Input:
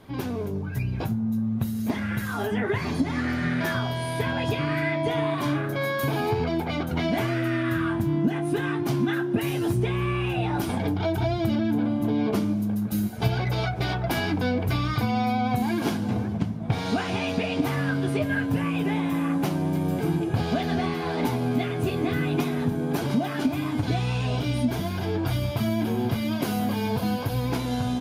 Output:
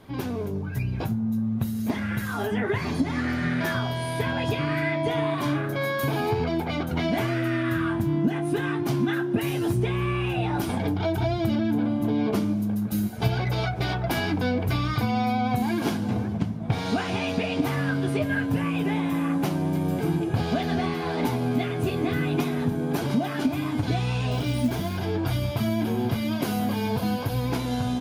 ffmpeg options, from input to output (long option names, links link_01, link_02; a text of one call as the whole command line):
ffmpeg -i in.wav -filter_complex "[0:a]asettb=1/sr,asplit=3[link_01][link_02][link_03];[link_01]atrim=end=24.314[link_04];[link_02]atrim=start=24.31:end=24.97,asetpts=PTS-STARTPTS,afade=type=in:duration=0.004:curve=qsin,afade=type=out:start_time=0.656:duration=0.004:curve=qsin,acrusher=bits=6:mode=log:mix=0:aa=0.000001[link_05];[link_03]atrim=start=24.966[link_06];[link_04][link_05]acrossfade=duration=0.004:curve1=hsin:curve2=qsin[link_07];[link_07][link_06]acrossfade=duration=0.004:curve1=qsin:curve2=hsin" out.wav